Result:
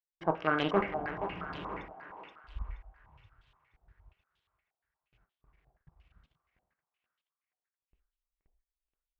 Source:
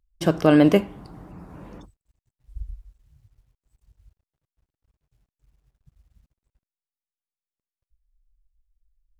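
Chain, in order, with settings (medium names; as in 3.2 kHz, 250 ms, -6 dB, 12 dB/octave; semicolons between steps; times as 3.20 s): fade-in on the opening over 0.97 s; gate with hold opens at -57 dBFS; bass shelf 400 Hz -8.5 dB; reverse; compression 16:1, threshold -32 dBFS, peak gain reduction 15.5 dB; reverse; Chebyshev shaper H 6 -8 dB, 8 -11 dB, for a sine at -21.5 dBFS; thinning echo 476 ms, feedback 47%, high-pass 700 Hz, level -6 dB; on a send at -7 dB: reverberation RT60 0.45 s, pre-delay 3 ms; on the sum: step-sequenced low-pass 8.5 Hz 750–3300 Hz; trim +3 dB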